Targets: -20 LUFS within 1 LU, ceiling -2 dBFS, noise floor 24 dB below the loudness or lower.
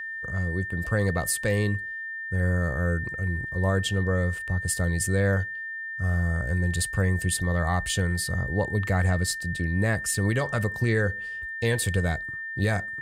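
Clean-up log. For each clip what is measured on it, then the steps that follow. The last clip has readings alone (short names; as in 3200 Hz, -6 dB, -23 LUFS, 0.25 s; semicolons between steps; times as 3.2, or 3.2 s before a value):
steady tone 1800 Hz; tone level -32 dBFS; loudness -26.5 LUFS; peak -13.5 dBFS; loudness target -20.0 LUFS
-> notch 1800 Hz, Q 30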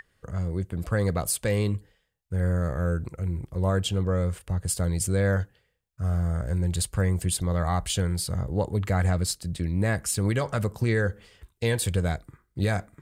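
steady tone none; loudness -27.0 LUFS; peak -14.0 dBFS; loudness target -20.0 LUFS
-> gain +7 dB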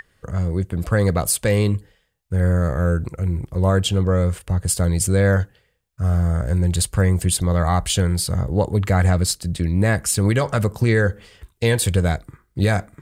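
loudness -20.0 LUFS; peak -7.0 dBFS; noise floor -66 dBFS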